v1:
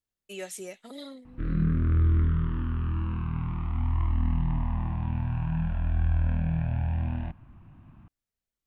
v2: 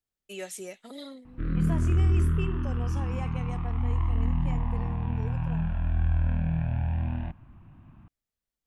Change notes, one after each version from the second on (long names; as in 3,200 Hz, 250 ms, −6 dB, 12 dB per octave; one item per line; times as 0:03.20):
second voice: unmuted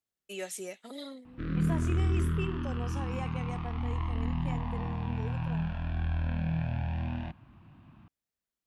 background: remove low-pass filter 2,500 Hz 12 dB per octave
master: add high-pass filter 130 Hz 6 dB per octave